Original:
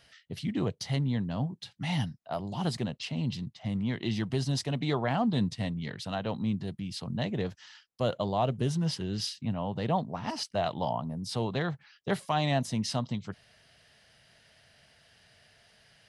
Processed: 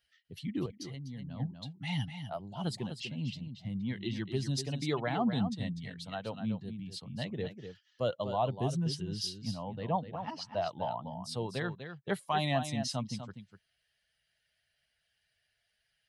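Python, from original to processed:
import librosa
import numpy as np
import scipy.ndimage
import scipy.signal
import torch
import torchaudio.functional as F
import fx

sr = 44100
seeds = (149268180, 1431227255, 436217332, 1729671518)

p1 = fx.bin_expand(x, sr, power=1.5)
p2 = fx.low_shelf(p1, sr, hz=110.0, db=-6.0)
p3 = p2 + fx.echo_single(p2, sr, ms=247, db=-9.0, dry=0)
p4 = fx.level_steps(p3, sr, step_db=14, at=(0.66, 1.4))
y = fx.air_absorb(p4, sr, metres=120.0, at=(9.78, 11.14))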